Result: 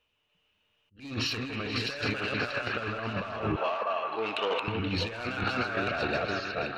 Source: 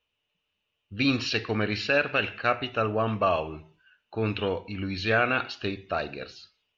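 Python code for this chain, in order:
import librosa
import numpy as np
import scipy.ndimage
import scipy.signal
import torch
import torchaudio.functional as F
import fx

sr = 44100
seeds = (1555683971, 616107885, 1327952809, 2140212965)

p1 = fx.reverse_delay_fb(x, sr, ms=320, feedback_pct=42, wet_db=-3.0)
p2 = 10.0 ** (-22.5 / 20.0) * np.tanh(p1 / 10.0 ** (-22.5 / 20.0))
p3 = fx.highpass(p2, sr, hz=550.0, slope=12, at=(3.56, 4.68))
p4 = fx.over_compress(p3, sr, threshold_db=-32.0, ratio=-0.5)
p5 = fx.high_shelf(p4, sr, hz=5100.0, db=-5.0)
p6 = p5 + fx.echo_stepped(p5, sr, ms=159, hz=1200.0, octaves=0.7, feedback_pct=70, wet_db=-2, dry=0)
p7 = fx.attack_slew(p6, sr, db_per_s=190.0)
y = p7 * 10.0 ** (1.5 / 20.0)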